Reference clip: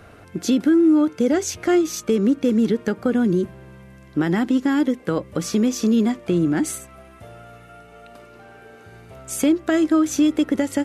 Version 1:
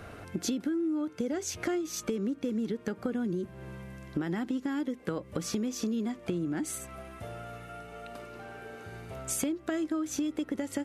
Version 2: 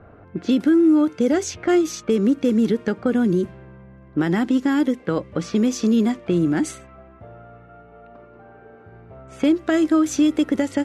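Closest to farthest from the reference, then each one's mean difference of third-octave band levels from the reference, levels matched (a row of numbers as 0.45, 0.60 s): 2, 1; 1.0, 5.0 dB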